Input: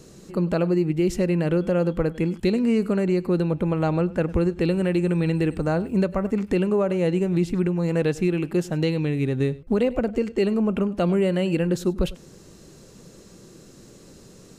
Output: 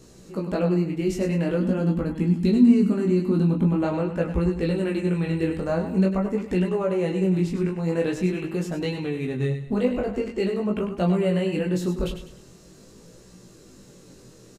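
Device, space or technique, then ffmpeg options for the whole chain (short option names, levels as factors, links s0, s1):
double-tracked vocal: -filter_complex "[0:a]asettb=1/sr,asplit=3[s0][s1][s2];[s0]atrim=end=1.604[s3];[s1]atrim=start=1.6:end=3.82,asetpts=PTS-STARTPTS,afade=t=in:d=0.004:c=qsin,afade=t=out:st=2.216:d=0.004:c=qsin,equalizer=f=250:t=o:w=1:g=11,equalizer=f=500:t=o:w=1:g=-8,equalizer=f=2000:t=o:w=1:g=-5[s4];[s2]atrim=start=3.816[s5];[s3][s4]acrossfade=d=0.004:c1=hsin:c2=qsin[s6];[s6][s5]acrossfade=d=0.004:c1=qsin:c2=hsin,asplit=2[s7][s8];[s8]adelay=16,volume=0.473[s9];[s7][s9]amix=inputs=2:normalize=0,aecho=1:1:100|200|300|400:0.355|0.135|0.0512|0.0195,flanger=delay=17:depth=7.6:speed=0.45"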